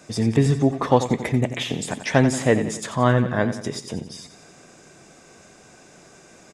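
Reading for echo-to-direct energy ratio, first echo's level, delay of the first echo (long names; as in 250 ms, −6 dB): −10.0 dB, −11.5 dB, 89 ms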